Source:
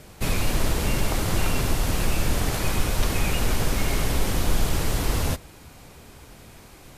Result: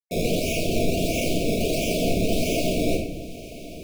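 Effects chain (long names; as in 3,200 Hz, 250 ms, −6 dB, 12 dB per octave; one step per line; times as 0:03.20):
gate on every frequency bin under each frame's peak −25 dB weak
log-companded quantiser 2 bits
time stretch by overlap-add 0.55×, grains 85 ms
sample-and-hold swept by an LFO 20×, swing 100% 1.5 Hz
linear-phase brick-wall band-stop 720–2,200 Hz
feedback delay with all-pass diffusion 1,021 ms, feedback 44%, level −16 dB
rectangular room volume 220 cubic metres, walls mixed, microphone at 1.5 metres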